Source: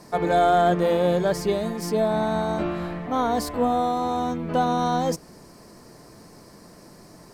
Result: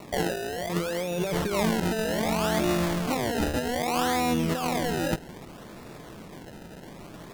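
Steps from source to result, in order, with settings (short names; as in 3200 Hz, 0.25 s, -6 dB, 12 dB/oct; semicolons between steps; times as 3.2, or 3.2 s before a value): decimation with a swept rate 27×, swing 100% 0.64 Hz; wow and flutter 22 cents; negative-ratio compressor -27 dBFS, ratio -1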